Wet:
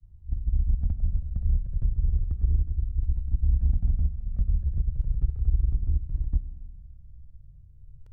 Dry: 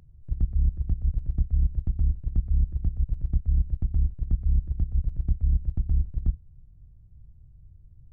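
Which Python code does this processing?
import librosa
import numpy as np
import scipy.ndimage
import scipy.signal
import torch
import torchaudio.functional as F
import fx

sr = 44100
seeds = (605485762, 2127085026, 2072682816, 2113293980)

p1 = fx.granulator(x, sr, seeds[0], grain_ms=100.0, per_s=20.0, spray_ms=100.0, spread_st=0)
p2 = fx.rev_schroeder(p1, sr, rt60_s=1.9, comb_ms=31, drr_db=12.0)
p3 = 10.0 ** (-28.5 / 20.0) * np.tanh(p2 / 10.0 ** (-28.5 / 20.0))
p4 = p2 + (p3 * 10.0 ** (-4.5 / 20.0))
y = fx.comb_cascade(p4, sr, direction='falling', hz=0.33)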